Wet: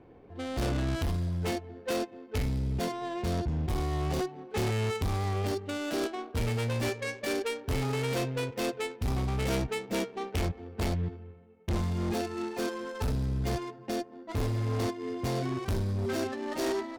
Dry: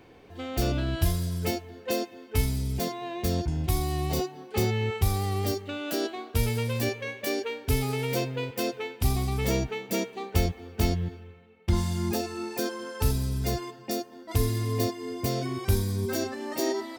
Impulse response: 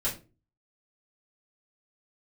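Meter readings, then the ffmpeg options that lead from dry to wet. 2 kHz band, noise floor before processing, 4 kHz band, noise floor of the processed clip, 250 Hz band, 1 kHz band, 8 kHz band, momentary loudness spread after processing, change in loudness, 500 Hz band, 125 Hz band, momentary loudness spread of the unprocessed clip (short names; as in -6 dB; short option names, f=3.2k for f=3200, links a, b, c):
-1.5 dB, -50 dBFS, -4.0 dB, -51 dBFS, -2.0 dB, -1.5 dB, -6.0 dB, 5 LU, -3.0 dB, -2.0 dB, -3.0 dB, 5 LU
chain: -af "volume=26dB,asoftclip=hard,volume=-26dB,adynamicsmooth=sensitivity=5:basefreq=910,aemphasis=mode=production:type=75kf"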